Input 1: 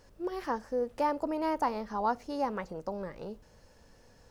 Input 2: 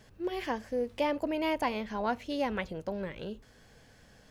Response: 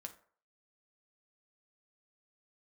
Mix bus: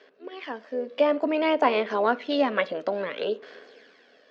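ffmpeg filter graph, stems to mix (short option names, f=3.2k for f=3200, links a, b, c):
-filter_complex "[0:a]lowpass=1.8k,volume=-7dB,asplit=2[a][b];[1:a]highpass=f=460:w=0.5412,highpass=f=460:w=1.3066,tremolo=f=79:d=0.4,aphaser=in_gain=1:out_gain=1:delay=1.8:decay=0.46:speed=0.57:type=sinusoidal,volume=2dB,asplit=2[c][d];[d]volume=-9.5dB[e];[b]apad=whole_len=189868[f];[c][f]sidechaincompress=threshold=-43dB:ratio=8:attack=5:release=358[g];[2:a]atrim=start_sample=2205[h];[e][h]afir=irnorm=-1:irlink=0[i];[a][g][i]amix=inputs=3:normalize=0,dynaudnorm=f=210:g=9:m=12.5dB,highpass=f=220:w=0.5412,highpass=f=220:w=1.3066,equalizer=f=270:t=q:w=4:g=7,equalizer=f=410:t=q:w=4:g=9,equalizer=f=860:t=q:w=4:g=-9,lowpass=f=4.4k:w=0.5412,lowpass=f=4.4k:w=1.3066"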